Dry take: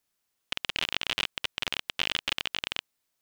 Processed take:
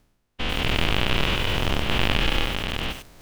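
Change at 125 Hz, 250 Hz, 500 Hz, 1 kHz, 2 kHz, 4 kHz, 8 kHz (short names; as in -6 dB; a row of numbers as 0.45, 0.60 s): +24.0, +19.0, +15.0, +11.0, +6.0, +4.0, +3.5 dB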